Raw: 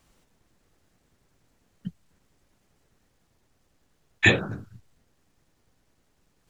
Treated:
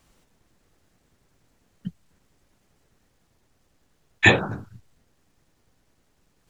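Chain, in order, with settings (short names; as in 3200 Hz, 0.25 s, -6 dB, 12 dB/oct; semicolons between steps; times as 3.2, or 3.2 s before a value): 4.25–4.69 bell 900 Hz +9 dB 0.81 oct; gain +2 dB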